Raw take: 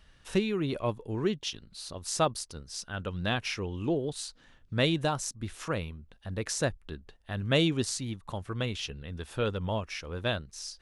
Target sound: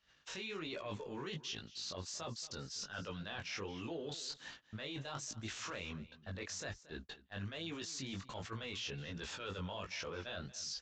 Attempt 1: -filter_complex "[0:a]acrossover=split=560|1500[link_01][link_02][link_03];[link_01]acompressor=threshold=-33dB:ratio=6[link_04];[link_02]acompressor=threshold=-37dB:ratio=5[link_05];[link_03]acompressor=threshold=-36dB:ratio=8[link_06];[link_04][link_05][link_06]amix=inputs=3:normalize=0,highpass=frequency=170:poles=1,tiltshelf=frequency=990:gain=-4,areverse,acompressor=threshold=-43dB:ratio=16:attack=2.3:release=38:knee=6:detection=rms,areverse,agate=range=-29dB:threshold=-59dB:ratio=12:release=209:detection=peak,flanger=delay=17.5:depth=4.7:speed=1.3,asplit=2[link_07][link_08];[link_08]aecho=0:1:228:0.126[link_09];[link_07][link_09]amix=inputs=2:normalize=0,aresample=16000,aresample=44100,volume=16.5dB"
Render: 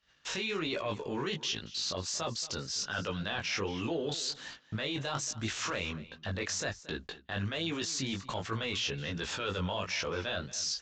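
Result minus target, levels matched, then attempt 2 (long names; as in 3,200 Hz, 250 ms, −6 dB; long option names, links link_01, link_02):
downward compressor: peak gain reduction −9.5 dB
-filter_complex "[0:a]acrossover=split=560|1500[link_01][link_02][link_03];[link_01]acompressor=threshold=-33dB:ratio=6[link_04];[link_02]acompressor=threshold=-37dB:ratio=5[link_05];[link_03]acompressor=threshold=-36dB:ratio=8[link_06];[link_04][link_05][link_06]amix=inputs=3:normalize=0,highpass=frequency=170:poles=1,tiltshelf=frequency=990:gain=-4,areverse,acompressor=threshold=-53dB:ratio=16:attack=2.3:release=38:knee=6:detection=rms,areverse,agate=range=-29dB:threshold=-59dB:ratio=12:release=209:detection=peak,flanger=delay=17.5:depth=4.7:speed=1.3,asplit=2[link_07][link_08];[link_08]aecho=0:1:228:0.126[link_09];[link_07][link_09]amix=inputs=2:normalize=0,aresample=16000,aresample=44100,volume=16.5dB"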